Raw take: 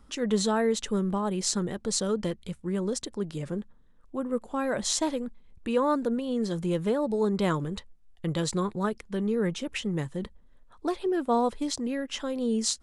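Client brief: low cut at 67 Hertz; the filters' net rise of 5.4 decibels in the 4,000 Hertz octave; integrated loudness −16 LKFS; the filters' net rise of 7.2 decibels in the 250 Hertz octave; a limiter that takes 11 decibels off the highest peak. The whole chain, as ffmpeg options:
ffmpeg -i in.wav -af "highpass=67,equalizer=frequency=250:width_type=o:gain=9,equalizer=frequency=4000:width_type=o:gain=6.5,volume=11dB,alimiter=limit=-7.5dB:level=0:latency=1" out.wav

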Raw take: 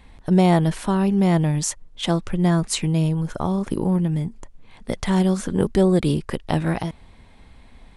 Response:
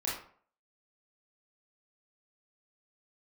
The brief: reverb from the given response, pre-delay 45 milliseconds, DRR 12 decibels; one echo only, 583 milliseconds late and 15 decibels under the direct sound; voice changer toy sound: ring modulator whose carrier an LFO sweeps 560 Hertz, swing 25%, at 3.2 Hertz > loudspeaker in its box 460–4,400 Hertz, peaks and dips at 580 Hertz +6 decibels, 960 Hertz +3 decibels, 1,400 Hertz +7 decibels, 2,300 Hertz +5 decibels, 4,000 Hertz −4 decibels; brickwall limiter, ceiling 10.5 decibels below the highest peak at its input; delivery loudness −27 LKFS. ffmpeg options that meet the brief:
-filter_complex "[0:a]alimiter=limit=-15dB:level=0:latency=1,aecho=1:1:583:0.178,asplit=2[link_01][link_02];[1:a]atrim=start_sample=2205,adelay=45[link_03];[link_02][link_03]afir=irnorm=-1:irlink=0,volume=-17dB[link_04];[link_01][link_04]amix=inputs=2:normalize=0,aeval=exprs='val(0)*sin(2*PI*560*n/s+560*0.25/3.2*sin(2*PI*3.2*n/s))':channel_layout=same,highpass=460,equalizer=frequency=580:width_type=q:width=4:gain=6,equalizer=frequency=960:width_type=q:width=4:gain=3,equalizer=frequency=1400:width_type=q:width=4:gain=7,equalizer=frequency=2300:width_type=q:width=4:gain=5,equalizer=frequency=4000:width_type=q:width=4:gain=-4,lowpass=frequency=4400:width=0.5412,lowpass=frequency=4400:width=1.3066,volume=-0.5dB"

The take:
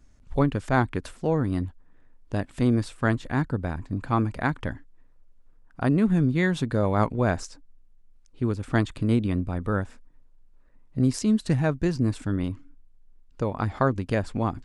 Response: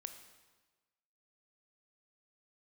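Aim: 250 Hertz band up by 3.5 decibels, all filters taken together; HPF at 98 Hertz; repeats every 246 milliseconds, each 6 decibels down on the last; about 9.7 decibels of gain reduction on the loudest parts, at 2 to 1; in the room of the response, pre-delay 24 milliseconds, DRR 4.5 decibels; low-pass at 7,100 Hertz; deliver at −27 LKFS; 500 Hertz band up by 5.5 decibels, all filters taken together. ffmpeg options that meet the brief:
-filter_complex "[0:a]highpass=98,lowpass=7100,equalizer=frequency=250:width_type=o:gain=3,equalizer=frequency=500:width_type=o:gain=6,acompressor=threshold=-32dB:ratio=2,aecho=1:1:246|492|738|984|1230|1476:0.501|0.251|0.125|0.0626|0.0313|0.0157,asplit=2[link_01][link_02];[1:a]atrim=start_sample=2205,adelay=24[link_03];[link_02][link_03]afir=irnorm=-1:irlink=0,volume=-0.5dB[link_04];[link_01][link_04]amix=inputs=2:normalize=0,volume=2.5dB"

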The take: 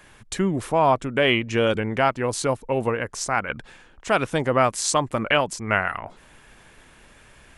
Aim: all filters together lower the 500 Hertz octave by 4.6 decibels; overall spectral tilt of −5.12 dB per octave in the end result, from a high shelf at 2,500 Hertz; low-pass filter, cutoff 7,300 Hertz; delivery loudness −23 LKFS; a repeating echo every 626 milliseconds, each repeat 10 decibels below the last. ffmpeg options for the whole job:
ffmpeg -i in.wav -af "lowpass=7300,equalizer=frequency=500:width_type=o:gain=-5.5,highshelf=frequency=2500:gain=-6.5,aecho=1:1:626|1252|1878|2504:0.316|0.101|0.0324|0.0104,volume=2.5dB" out.wav

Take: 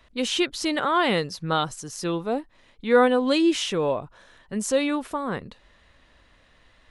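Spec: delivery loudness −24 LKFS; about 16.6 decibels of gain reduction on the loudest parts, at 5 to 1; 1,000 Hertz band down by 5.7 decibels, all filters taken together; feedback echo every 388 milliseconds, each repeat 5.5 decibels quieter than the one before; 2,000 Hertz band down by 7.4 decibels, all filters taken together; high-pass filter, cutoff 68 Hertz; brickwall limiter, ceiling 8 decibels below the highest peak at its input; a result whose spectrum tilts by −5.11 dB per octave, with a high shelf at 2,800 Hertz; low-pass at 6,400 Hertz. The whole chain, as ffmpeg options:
ffmpeg -i in.wav -af "highpass=68,lowpass=6400,equalizer=frequency=1000:width_type=o:gain=-5,equalizer=frequency=2000:width_type=o:gain=-4.5,highshelf=frequency=2800:gain=-9,acompressor=threshold=-34dB:ratio=5,alimiter=level_in=8dB:limit=-24dB:level=0:latency=1,volume=-8dB,aecho=1:1:388|776|1164|1552|1940|2328|2716:0.531|0.281|0.149|0.079|0.0419|0.0222|0.0118,volume=16dB" out.wav

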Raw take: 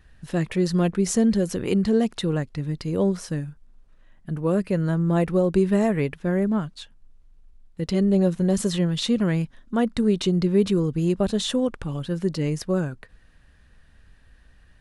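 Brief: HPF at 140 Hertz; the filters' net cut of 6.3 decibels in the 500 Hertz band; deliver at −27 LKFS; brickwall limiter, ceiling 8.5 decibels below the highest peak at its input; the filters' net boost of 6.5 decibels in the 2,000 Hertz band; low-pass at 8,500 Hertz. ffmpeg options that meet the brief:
ffmpeg -i in.wav -af "highpass=140,lowpass=8500,equalizer=frequency=500:width_type=o:gain=-9,equalizer=frequency=2000:width_type=o:gain=8.5,volume=2dB,alimiter=limit=-18.5dB:level=0:latency=1" out.wav

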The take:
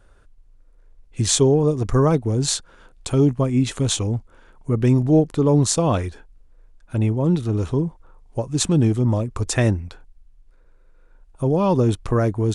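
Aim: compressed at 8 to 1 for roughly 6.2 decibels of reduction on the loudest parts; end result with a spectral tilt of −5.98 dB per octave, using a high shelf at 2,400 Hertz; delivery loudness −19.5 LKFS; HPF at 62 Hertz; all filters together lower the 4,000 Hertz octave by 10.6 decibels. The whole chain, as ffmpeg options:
ffmpeg -i in.wav -af "highpass=62,highshelf=frequency=2400:gain=-7,equalizer=frequency=4000:width_type=o:gain=-6.5,acompressor=threshold=-18dB:ratio=8,volume=5dB" out.wav

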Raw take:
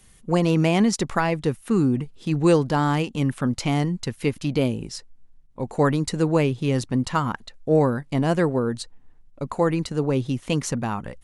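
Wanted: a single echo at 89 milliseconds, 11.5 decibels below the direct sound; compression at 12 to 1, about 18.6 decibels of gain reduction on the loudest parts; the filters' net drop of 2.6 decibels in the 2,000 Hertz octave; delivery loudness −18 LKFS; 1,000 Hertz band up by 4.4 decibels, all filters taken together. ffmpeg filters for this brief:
ffmpeg -i in.wav -af "equalizer=frequency=1000:width_type=o:gain=7,equalizer=frequency=2000:width_type=o:gain=-6.5,acompressor=threshold=-32dB:ratio=12,aecho=1:1:89:0.266,volume=19dB" out.wav

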